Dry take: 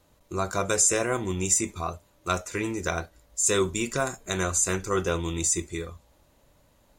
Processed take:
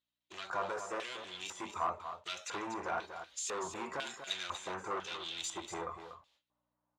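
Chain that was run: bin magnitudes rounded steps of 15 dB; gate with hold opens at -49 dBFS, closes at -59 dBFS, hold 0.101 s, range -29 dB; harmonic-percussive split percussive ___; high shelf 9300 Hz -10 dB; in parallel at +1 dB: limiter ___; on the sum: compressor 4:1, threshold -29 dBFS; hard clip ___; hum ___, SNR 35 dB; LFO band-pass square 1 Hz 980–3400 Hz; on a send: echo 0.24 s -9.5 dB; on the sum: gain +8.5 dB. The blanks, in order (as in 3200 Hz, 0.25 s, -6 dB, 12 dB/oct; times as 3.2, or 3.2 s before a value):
-3 dB, -23 dBFS, -32.5 dBFS, 60 Hz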